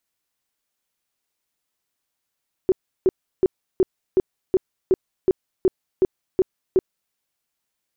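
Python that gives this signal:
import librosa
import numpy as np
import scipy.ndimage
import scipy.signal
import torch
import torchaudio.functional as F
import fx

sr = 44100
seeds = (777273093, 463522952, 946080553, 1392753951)

y = fx.tone_burst(sr, hz=375.0, cycles=11, every_s=0.37, bursts=12, level_db=-12.0)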